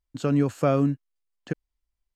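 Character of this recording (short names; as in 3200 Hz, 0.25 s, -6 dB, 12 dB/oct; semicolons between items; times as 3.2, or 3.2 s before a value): noise floor -85 dBFS; spectral tilt -7.5 dB/oct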